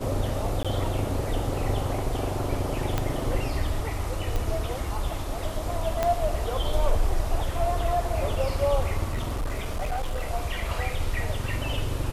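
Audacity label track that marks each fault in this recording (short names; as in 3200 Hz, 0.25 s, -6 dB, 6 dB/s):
0.630000	0.650000	gap 16 ms
2.980000	2.980000	pop -11 dBFS
4.360000	4.360000	pop
6.030000	6.030000	pop -10 dBFS
9.030000	10.270000	clipped -24 dBFS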